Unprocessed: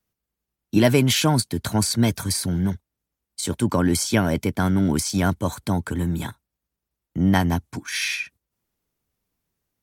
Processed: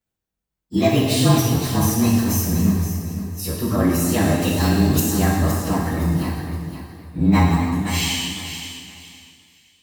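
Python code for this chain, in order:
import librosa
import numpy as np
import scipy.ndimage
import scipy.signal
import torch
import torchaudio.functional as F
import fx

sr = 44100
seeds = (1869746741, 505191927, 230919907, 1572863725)

p1 = fx.partial_stretch(x, sr, pct=109)
p2 = fx.rider(p1, sr, range_db=10, speed_s=0.5)
p3 = p1 + F.gain(torch.from_numpy(p2), -3.0).numpy()
p4 = fx.high_shelf_res(p3, sr, hz=2600.0, db=10.0, q=1.5, at=(4.41, 5.0))
p5 = p4 + fx.echo_feedback(p4, sr, ms=517, feedback_pct=26, wet_db=-10, dry=0)
p6 = fx.rev_plate(p5, sr, seeds[0], rt60_s=1.5, hf_ratio=0.9, predelay_ms=0, drr_db=-2.0)
p7 = fx.echo_warbled(p6, sr, ms=252, feedback_pct=42, rate_hz=2.8, cents=181, wet_db=-14.5)
y = F.gain(torch.from_numpy(p7), -4.0).numpy()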